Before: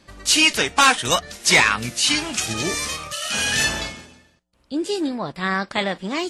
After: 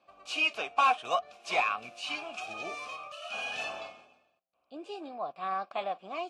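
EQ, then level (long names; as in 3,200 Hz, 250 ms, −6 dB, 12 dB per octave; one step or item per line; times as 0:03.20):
formant filter a
0.0 dB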